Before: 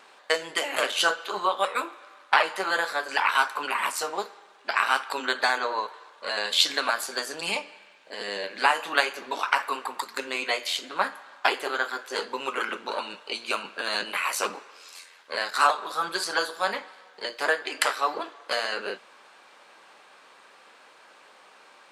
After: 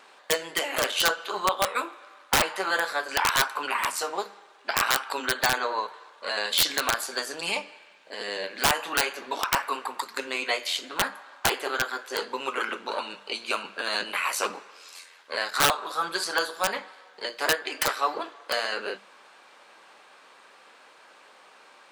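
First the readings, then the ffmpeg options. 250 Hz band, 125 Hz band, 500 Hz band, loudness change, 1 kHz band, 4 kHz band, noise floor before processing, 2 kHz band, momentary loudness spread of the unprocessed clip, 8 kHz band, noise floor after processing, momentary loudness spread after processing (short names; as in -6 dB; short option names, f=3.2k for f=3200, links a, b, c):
+1.5 dB, n/a, -0.5 dB, 0.0 dB, -1.5 dB, +0.5 dB, -54 dBFS, -1.0 dB, 13 LU, +4.5 dB, -54 dBFS, 13 LU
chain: -af "bandreject=f=50:t=h:w=6,bandreject=f=100:t=h:w=6,bandreject=f=150:t=h:w=6,bandreject=f=200:t=h:w=6,aeval=exprs='(mod(4.22*val(0)+1,2)-1)/4.22':c=same"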